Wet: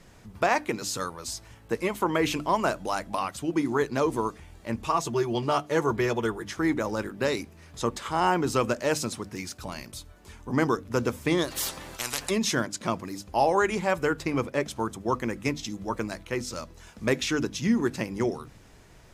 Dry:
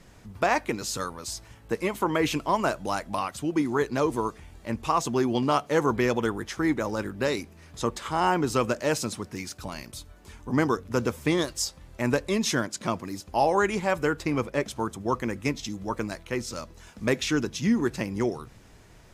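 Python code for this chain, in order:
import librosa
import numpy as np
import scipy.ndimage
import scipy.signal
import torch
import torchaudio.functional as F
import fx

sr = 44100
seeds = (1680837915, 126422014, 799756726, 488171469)

y = fx.hum_notches(x, sr, base_hz=50, count=6)
y = fx.notch_comb(y, sr, f0_hz=260.0, at=(4.85, 6.56))
y = fx.spectral_comp(y, sr, ratio=10.0, at=(11.5, 12.29), fade=0.02)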